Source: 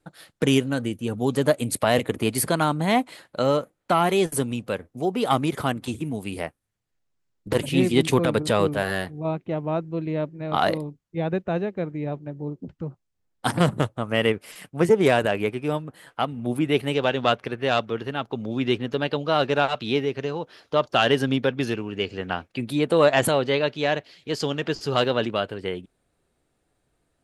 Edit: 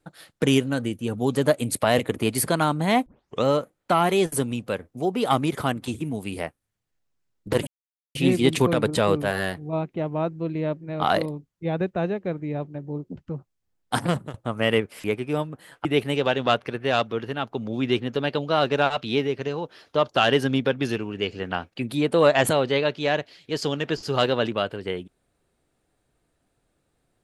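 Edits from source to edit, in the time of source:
0:03.06: tape start 0.38 s
0:07.67: splice in silence 0.48 s
0:13.46–0:13.86: fade out, to −18.5 dB
0:14.56–0:15.39: remove
0:16.20–0:16.63: remove

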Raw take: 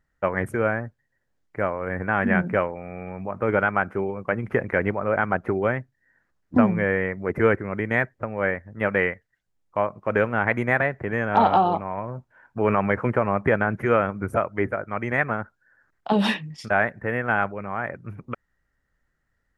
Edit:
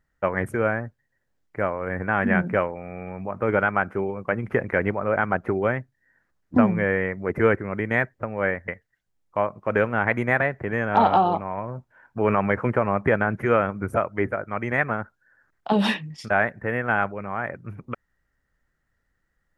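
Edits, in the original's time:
0:08.68–0:09.08: remove

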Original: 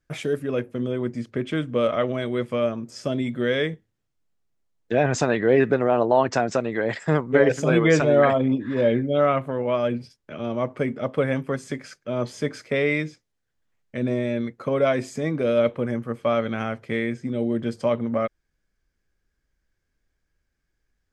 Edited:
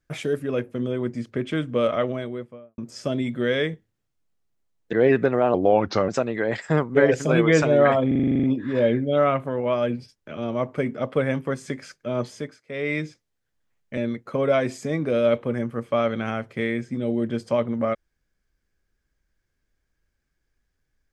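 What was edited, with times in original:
0:01.91–0:02.78: fade out and dull
0:04.93–0:05.41: remove
0:06.02–0:06.46: play speed 81%
0:08.45: stutter 0.04 s, 10 plays
0:12.22–0:13.05: duck −20.5 dB, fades 0.40 s
0:13.99–0:14.30: remove

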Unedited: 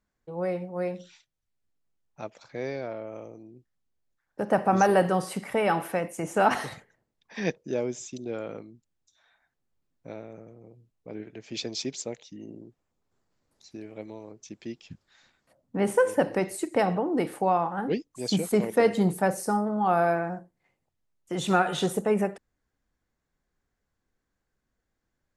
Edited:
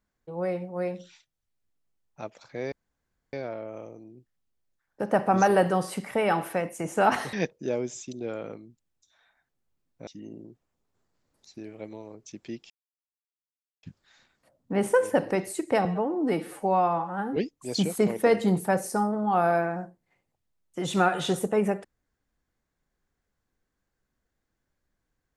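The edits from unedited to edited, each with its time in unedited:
0:02.72: splice in room tone 0.61 s
0:06.72–0:07.38: remove
0:10.12–0:12.24: remove
0:14.87: splice in silence 1.13 s
0:16.89–0:17.90: time-stretch 1.5×

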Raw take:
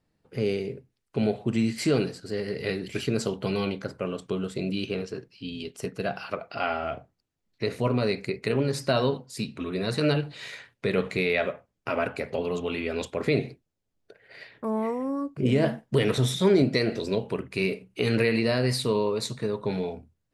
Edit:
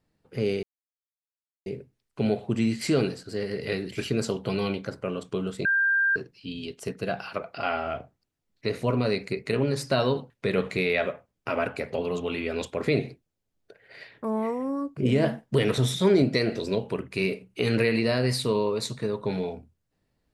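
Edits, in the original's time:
0:00.63: splice in silence 1.03 s
0:04.62–0:05.13: beep over 1,590 Hz −19.5 dBFS
0:09.27–0:10.70: remove

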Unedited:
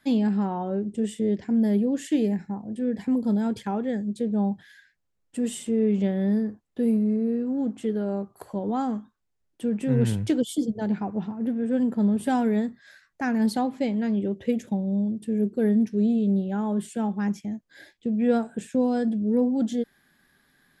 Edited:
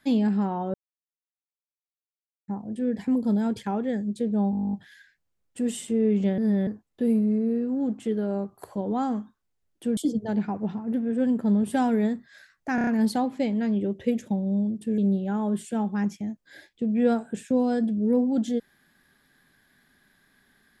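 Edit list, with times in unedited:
0:00.74–0:02.48: silence
0:04.51: stutter 0.02 s, 12 plays
0:06.16–0:06.45: reverse
0:09.75–0:10.50: remove
0:13.28: stutter 0.03 s, 5 plays
0:15.39–0:16.22: remove

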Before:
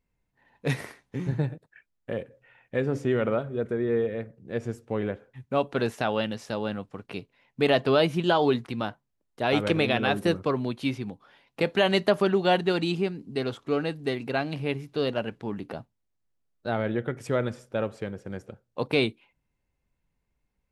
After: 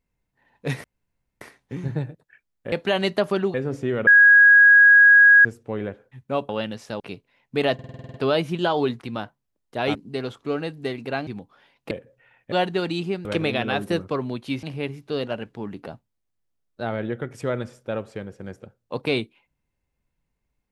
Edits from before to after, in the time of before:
0:00.84: splice in room tone 0.57 s
0:02.15–0:02.76: swap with 0:11.62–0:12.44
0:03.29–0:04.67: beep over 1,650 Hz −8.5 dBFS
0:05.71–0:06.09: remove
0:06.60–0:07.05: remove
0:07.79: stutter 0.05 s, 9 plays
0:09.60–0:10.98: swap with 0:13.17–0:14.49

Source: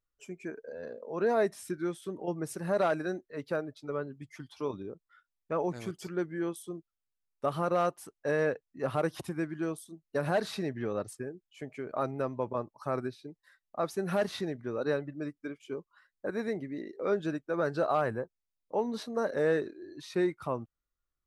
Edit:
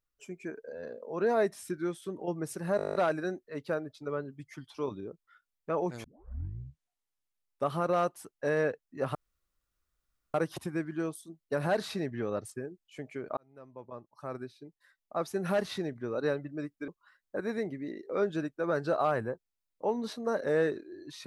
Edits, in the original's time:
0:02.77: stutter 0.02 s, 10 plays
0:05.86: tape start 1.60 s
0:08.97: splice in room tone 1.19 s
0:12.00–0:14.00: fade in
0:15.51–0:15.78: remove

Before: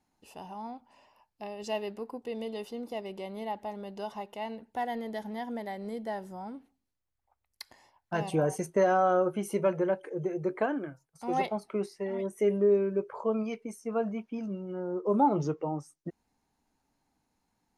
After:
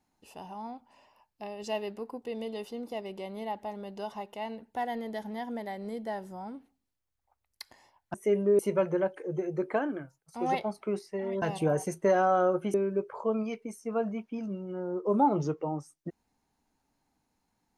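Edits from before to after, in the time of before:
0:08.14–0:09.46: swap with 0:12.29–0:12.74

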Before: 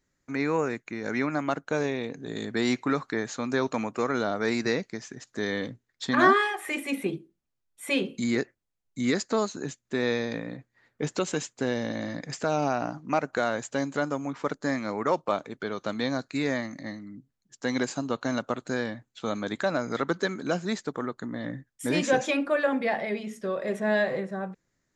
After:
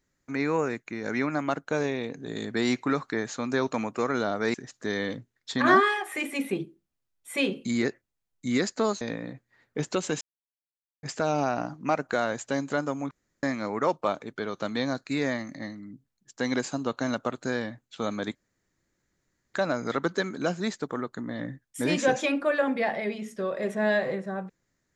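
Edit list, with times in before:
0:04.54–0:05.07: remove
0:09.54–0:10.25: remove
0:11.45–0:12.27: silence
0:14.35–0:14.67: fill with room tone
0:19.59: splice in room tone 1.19 s

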